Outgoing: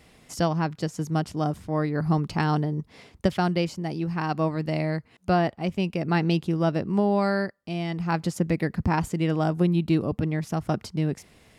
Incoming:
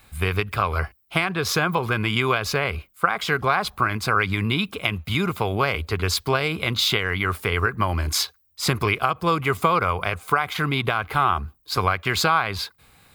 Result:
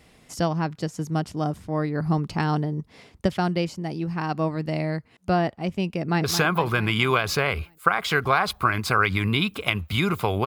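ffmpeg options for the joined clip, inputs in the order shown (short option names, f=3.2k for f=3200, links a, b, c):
-filter_complex "[0:a]apad=whole_dur=10.46,atrim=end=10.46,atrim=end=6.242[a];[1:a]atrim=start=1.408:end=5.63[b];[a][b]acrossfade=d=0.004:c1=hsin:c2=hsin,asplit=2[c][d];[d]afade=t=in:st=5.98:d=0.01,afade=t=out:st=6.24:d=0.01,aecho=0:1:220|440|660|880|1100|1320|1540:0.334965|0.200979|0.120588|0.0723525|0.0434115|0.0260469|0.0156281[e];[c][e]amix=inputs=2:normalize=0"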